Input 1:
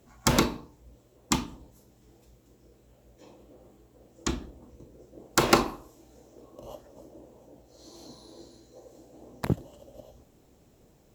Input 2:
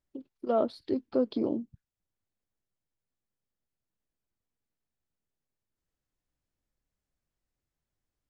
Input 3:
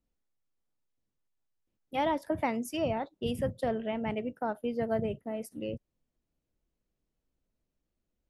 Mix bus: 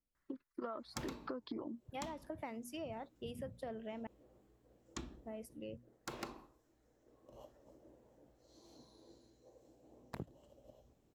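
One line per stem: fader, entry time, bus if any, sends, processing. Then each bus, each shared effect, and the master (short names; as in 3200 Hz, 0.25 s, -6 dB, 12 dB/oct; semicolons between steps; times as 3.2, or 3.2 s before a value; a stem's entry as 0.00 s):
5.33 s -12.5 dB -> 5.69 s -20 dB -> 6.89 s -20 dB -> 7.37 s -13 dB, 0.70 s, no send, high shelf 6000 Hz -6 dB
+0.5 dB, 0.15 s, no send, reverb removal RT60 0.93 s; band shelf 1400 Hz +13 dB 1.3 oct; compressor 4:1, threshold -31 dBFS, peak gain reduction 10 dB
-10.0 dB, 0.00 s, muted 4.07–5.23, no send, notches 60/120/180/240 Hz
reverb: off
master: compressor 5:1, threshold -41 dBFS, peak gain reduction 13 dB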